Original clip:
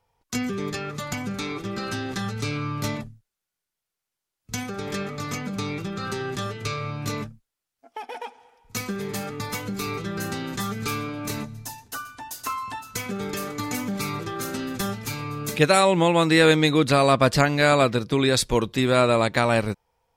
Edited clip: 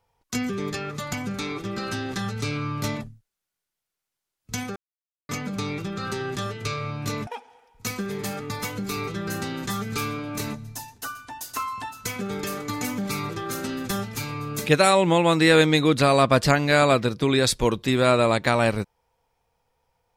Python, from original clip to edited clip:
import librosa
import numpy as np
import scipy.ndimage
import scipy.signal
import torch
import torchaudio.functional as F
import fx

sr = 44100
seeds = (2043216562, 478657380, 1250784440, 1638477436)

y = fx.edit(x, sr, fx.silence(start_s=4.76, length_s=0.53),
    fx.cut(start_s=7.27, length_s=0.9), tone=tone)